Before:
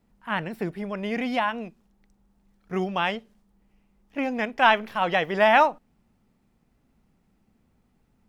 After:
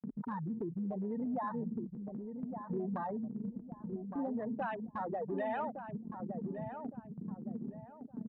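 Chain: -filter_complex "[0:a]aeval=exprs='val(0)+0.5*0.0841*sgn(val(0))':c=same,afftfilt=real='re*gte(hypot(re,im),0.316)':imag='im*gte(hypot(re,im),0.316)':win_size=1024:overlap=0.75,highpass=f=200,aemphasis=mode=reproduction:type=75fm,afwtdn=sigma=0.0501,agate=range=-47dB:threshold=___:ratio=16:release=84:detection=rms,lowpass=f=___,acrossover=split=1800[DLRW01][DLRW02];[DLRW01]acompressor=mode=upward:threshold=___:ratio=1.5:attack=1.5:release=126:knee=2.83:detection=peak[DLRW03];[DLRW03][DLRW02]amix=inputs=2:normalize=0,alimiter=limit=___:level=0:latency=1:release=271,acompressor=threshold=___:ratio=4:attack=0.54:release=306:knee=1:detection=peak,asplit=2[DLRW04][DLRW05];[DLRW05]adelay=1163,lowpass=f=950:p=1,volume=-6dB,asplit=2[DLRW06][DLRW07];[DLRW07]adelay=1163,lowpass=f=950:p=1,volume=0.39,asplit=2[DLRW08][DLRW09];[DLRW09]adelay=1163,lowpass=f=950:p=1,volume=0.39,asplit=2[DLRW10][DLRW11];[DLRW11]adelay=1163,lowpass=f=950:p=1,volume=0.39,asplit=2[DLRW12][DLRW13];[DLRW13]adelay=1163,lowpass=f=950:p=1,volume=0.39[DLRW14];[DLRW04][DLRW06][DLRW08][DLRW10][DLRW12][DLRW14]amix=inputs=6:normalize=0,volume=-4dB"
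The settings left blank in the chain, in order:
-52dB, 4300, -26dB, -14dB, -30dB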